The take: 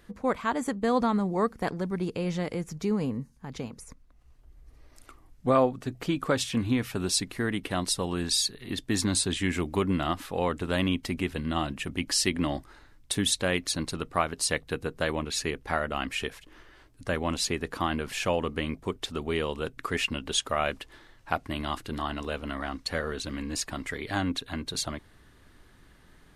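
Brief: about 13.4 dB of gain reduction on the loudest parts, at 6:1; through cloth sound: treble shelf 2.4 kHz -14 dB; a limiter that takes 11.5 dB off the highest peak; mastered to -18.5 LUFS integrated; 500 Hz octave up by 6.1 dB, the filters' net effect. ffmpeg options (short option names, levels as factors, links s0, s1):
-af "equalizer=f=500:t=o:g=8,acompressor=threshold=0.0447:ratio=6,alimiter=limit=0.0841:level=0:latency=1,highshelf=f=2400:g=-14,volume=7.08"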